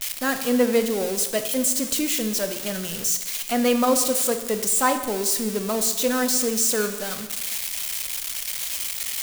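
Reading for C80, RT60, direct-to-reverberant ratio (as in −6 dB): 11.0 dB, 1.2 s, 7.5 dB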